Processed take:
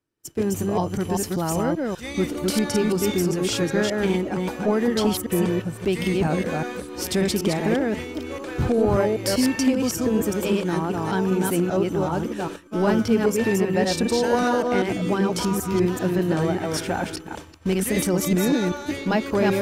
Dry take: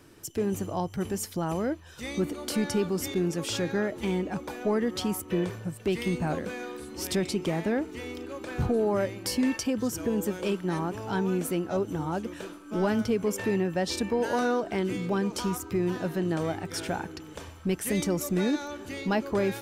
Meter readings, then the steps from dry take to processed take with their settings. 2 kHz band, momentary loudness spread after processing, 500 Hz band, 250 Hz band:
+6.5 dB, 7 LU, +6.5 dB, +6.5 dB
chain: reverse delay 0.195 s, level -2 dB; expander -33 dBFS; gain +4.5 dB

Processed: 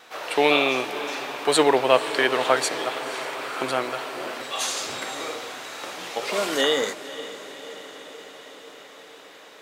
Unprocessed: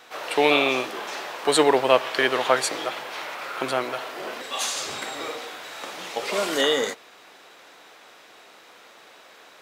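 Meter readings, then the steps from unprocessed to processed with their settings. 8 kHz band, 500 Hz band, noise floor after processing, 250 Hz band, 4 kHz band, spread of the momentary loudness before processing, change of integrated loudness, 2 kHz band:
+0.5 dB, 0.0 dB, -46 dBFS, +0.5 dB, +0.5 dB, 15 LU, 0.0 dB, +0.5 dB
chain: vibrato 2.1 Hz 12 cents; diffused feedback echo 0.512 s, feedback 69%, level -14 dB

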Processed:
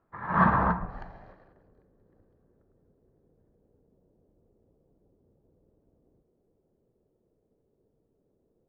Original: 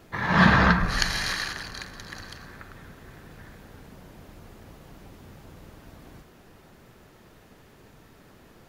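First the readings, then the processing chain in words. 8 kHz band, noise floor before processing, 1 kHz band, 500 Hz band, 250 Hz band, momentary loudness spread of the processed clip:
under -40 dB, -54 dBFS, -1.5 dB, -5.0 dB, -7.0 dB, 13 LU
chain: low-pass sweep 1200 Hz -> 470 Hz, 0.34–1.81; upward expander 1.5:1, over -44 dBFS; gain -5.5 dB

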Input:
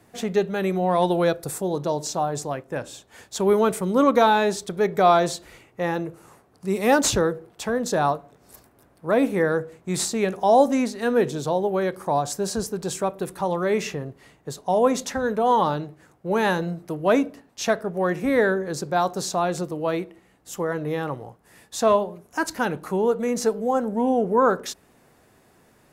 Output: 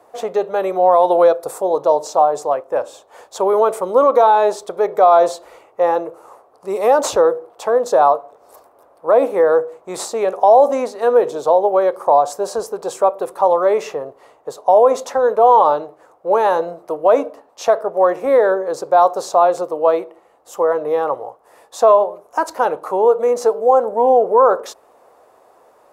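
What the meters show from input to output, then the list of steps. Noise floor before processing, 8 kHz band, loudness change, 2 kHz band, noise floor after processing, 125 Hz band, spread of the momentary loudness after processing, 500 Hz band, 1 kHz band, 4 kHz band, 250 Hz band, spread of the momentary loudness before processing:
-59 dBFS, -2.0 dB, +7.5 dB, -1.5 dB, -52 dBFS, under -10 dB, 11 LU, +8.5 dB, +9.0 dB, -3.0 dB, -5.0 dB, 13 LU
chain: resonant low shelf 250 Hz -9.5 dB, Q 1.5; limiter -12.5 dBFS, peak gain reduction 8 dB; band shelf 770 Hz +13 dB; gain -2 dB

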